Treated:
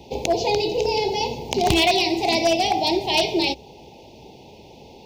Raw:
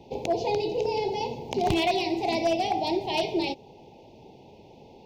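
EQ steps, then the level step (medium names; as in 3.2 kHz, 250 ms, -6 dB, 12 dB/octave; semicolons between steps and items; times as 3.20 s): peaking EQ 64 Hz +11.5 dB 0.24 oct; treble shelf 2.7 kHz +10 dB; +4.5 dB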